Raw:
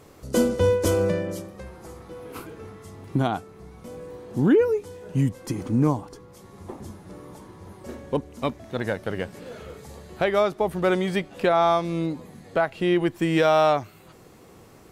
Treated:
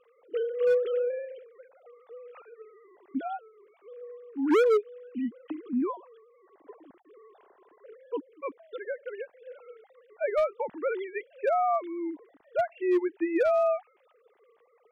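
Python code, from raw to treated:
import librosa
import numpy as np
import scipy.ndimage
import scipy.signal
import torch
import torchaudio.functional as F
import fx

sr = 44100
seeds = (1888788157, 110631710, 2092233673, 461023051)

y = fx.sine_speech(x, sr)
y = np.clip(y, -10.0 ** (-15.5 / 20.0), 10.0 ** (-15.5 / 20.0))
y = y * 10.0 ** (-3.5 / 20.0)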